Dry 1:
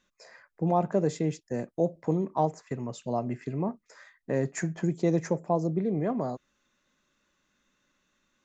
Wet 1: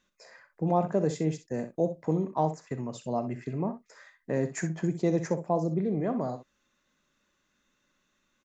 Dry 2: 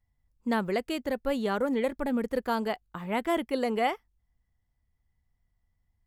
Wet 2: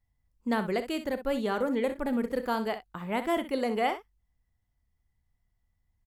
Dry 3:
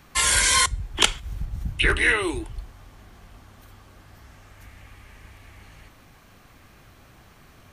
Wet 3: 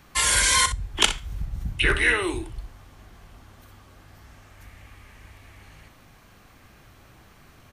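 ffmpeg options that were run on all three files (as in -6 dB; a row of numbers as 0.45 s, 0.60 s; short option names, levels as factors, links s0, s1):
-af "aecho=1:1:38|63:0.158|0.266,volume=0.891"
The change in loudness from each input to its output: -0.5 LU, -0.5 LU, -0.5 LU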